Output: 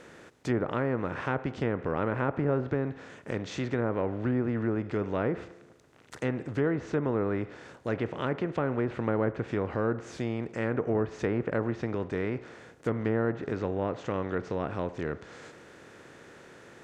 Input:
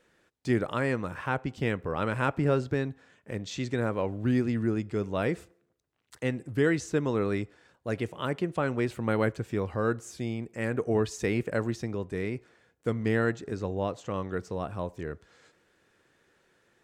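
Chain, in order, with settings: spectral levelling over time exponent 0.6; low-pass that closes with the level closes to 1.3 kHz, closed at -19.5 dBFS; trim -4 dB

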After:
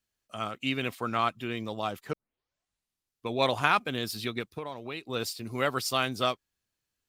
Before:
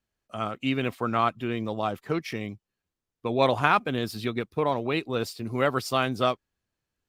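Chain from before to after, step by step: 2.13 s: tape start 1.15 s; treble shelf 2.1 kHz +10 dB; 4.49–5.07 s: compression 4:1, threshold -30 dBFS, peak gain reduction 9.5 dB; trim -5.5 dB

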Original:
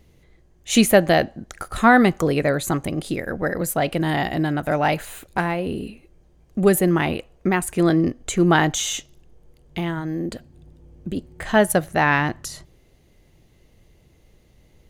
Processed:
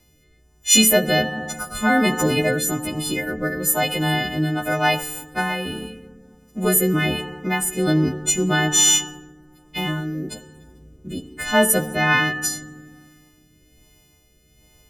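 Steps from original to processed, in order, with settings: partials quantised in pitch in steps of 3 st; FDN reverb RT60 1.7 s, low-frequency decay 1.5×, high-frequency decay 0.4×, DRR 10 dB; rotary cabinet horn 1.2 Hz

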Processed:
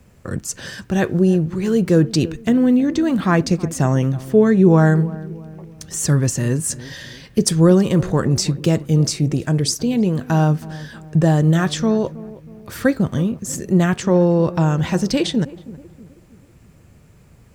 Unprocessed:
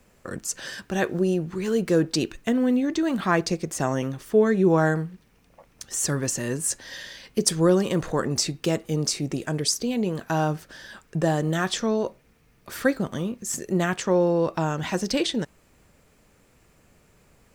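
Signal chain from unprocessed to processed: peaking EQ 100 Hz +13 dB 2.1 oct; on a send: filtered feedback delay 320 ms, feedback 48%, low-pass 920 Hz, level -17 dB; on the sum: trim +2.5 dB

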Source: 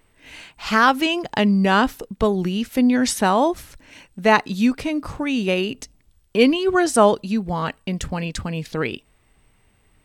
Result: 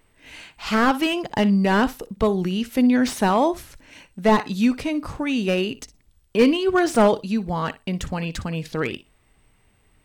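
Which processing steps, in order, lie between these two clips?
on a send: flutter echo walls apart 10.3 m, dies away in 0.2 s; on the sum: slew-rate limiter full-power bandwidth 230 Hz; trim -1 dB

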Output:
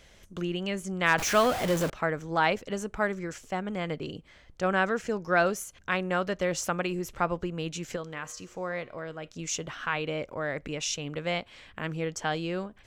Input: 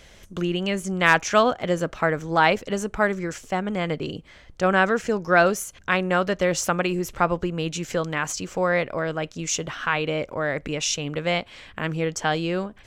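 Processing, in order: 1.18–1.90 s: jump at every zero crossing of -20.5 dBFS; 7.96–9.28 s: feedback comb 120 Hz, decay 0.81 s, harmonics all, mix 50%; trim -6.5 dB

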